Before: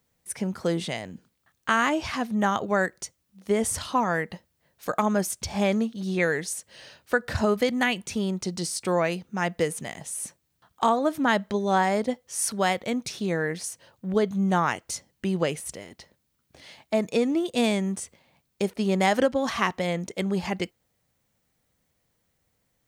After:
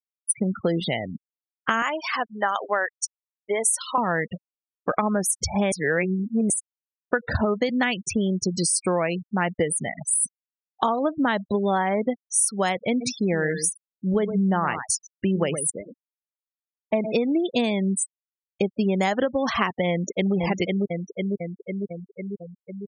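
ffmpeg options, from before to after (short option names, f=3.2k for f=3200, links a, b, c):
-filter_complex "[0:a]asettb=1/sr,asplit=3[a][b][c];[a]atrim=end=1.824[d];[b]atrim=start=1.82:end=3.98,asetpts=PTS-STARTPTS,afade=t=in:d=0.004:c=qsin,afade=t=out:st=2.156:d=0.004:c=qsin,highpass=600[e];[c]atrim=start=3.976[f];[d][e]acrossfade=d=0.004:c1=hsin:c2=qsin[g];[g][f]acrossfade=d=0.004:c1=qsin:c2=hsin,asplit=3[h][i][j];[h]afade=t=out:st=13:d=0.02[k];[i]aecho=1:1:114:0.282,afade=t=in:st=13:d=0.02,afade=t=out:st=17.12:d=0.02[l];[j]afade=t=in:st=17.12:d=0.02[m];[k][l][m]amix=inputs=3:normalize=0,asplit=2[n][o];[o]afade=t=in:st=19.9:d=0.01,afade=t=out:st=20.35:d=0.01,aecho=0:1:500|1000|1500|2000|2500|3000|3500|4000|4500|5000|5500|6000:0.707946|0.495562|0.346893|0.242825|0.169978|0.118984|0.0832891|0.0583024|0.0408117|0.0285682|0.0199977|0.0139984[p];[n][p]amix=inputs=2:normalize=0,asplit=3[q][r][s];[q]atrim=end=5.722[t];[r]atrim=start=5.718:end=6.502,asetpts=PTS-STARTPTS,areverse[u];[s]atrim=start=6.498[v];[t][u]acrossfade=d=0.004:c1=hsin:c2=hsin[w];[w][v]acrossfade=d=0.004:c1=hsin:c2=hsin,afftfilt=real='re*gte(hypot(re,im),0.0316)':imag='im*gte(hypot(re,im),0.0316)':win_size=1024:overlap=0.75,equalizer=f=9.9k:t=o:w=0.6:g=9.5,acompressor=threshold=-26dB:ratio=6,volume=7dB"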